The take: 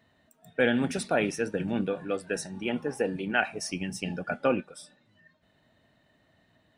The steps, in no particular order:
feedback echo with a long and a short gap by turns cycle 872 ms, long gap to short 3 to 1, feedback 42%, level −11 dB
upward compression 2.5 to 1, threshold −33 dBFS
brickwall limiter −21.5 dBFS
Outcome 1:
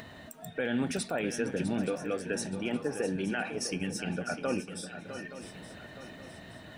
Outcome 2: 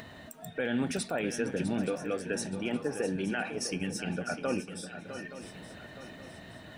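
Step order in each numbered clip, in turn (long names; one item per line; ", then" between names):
brickwall limiter, then upward compression, then feedback echo with a long and a short gap by turns
upward compression, then brickwall limiter, then feedback echo with a long and a short gap by turns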